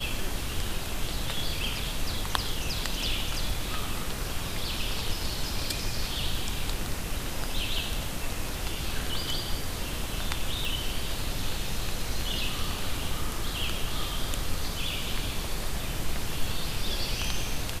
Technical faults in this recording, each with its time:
10.65 pop

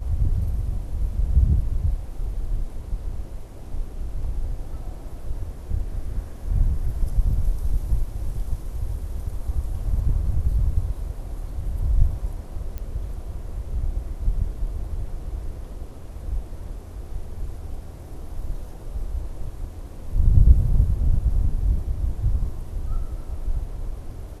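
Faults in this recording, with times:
12.78 pop -20 dBFS

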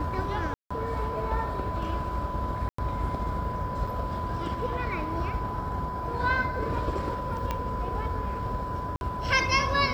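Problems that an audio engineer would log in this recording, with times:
tone 1000 Hz -33 dBFS
0.54–0.7 gap 0.165 s
2.69–2.78 gap 94 ms
3.87 gap 4.4 ms
7.51 pop -15 dBFS
8.96–9.01 gap 51 ms

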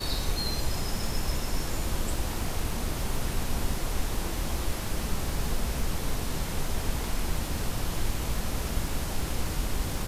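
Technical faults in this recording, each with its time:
crackle 60/s -36 dBFS

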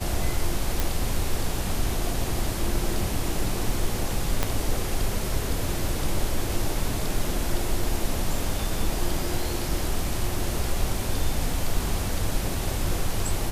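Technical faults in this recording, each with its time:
0.8 pop
4.43 pop -7 dBFS

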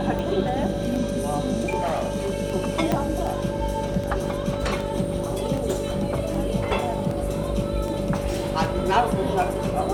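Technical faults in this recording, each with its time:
buzz 50 Hz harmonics 12 -30 dBFS
tick 78 rpm
tone 570 Hz -29 dBFS
1.79–2.34 clipped -20.5 dBFS
2.92 pop -9 dBFS

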